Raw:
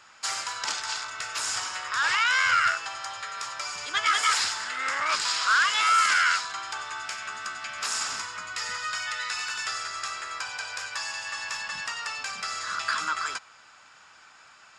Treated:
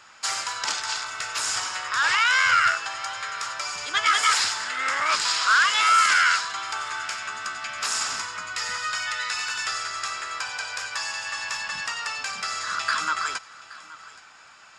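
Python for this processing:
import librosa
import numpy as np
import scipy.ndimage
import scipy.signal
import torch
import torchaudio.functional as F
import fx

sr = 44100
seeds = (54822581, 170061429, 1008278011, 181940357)

y = x + 10.0 ** (-19.0 / 20.0) * np.pad(x, (int(823 * sr / 1000.0), 0))[:len(x)]
y = F.gain(torch.from_numpy(y), 3.0).numpy()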